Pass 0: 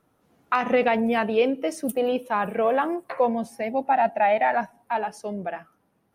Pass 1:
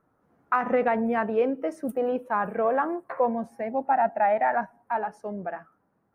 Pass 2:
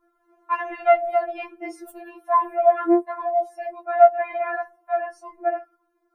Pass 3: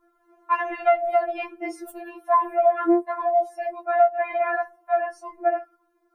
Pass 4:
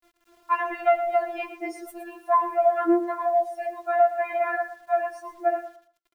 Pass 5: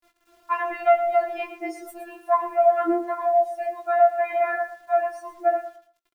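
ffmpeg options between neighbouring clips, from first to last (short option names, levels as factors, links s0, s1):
-af "highshelf=f=2200:t=q:w=1.5:g=-11.5,volume=0.708"
-af "afftfilt=real='re*4*eq(mod(b,16),0)':imag='im*4*eq(mod(b,16),0)':win_size=2048:overlap=0.75,volume=1.88"
-af "acompressor=threshold=0.141:ratio=5,volume=1.33"
-af "acrusher=bits=9:mix=0:aa=0.000001,aecho=1:1:115|230|345:0.251|0.0553|0.0122,volume=0.841"
-filter_complex "[0:a]asplit=2[s0][s1];[s1]adelay=19,volume=0.473[s2];[s0][s2]amix=inputs=2:normalize=0"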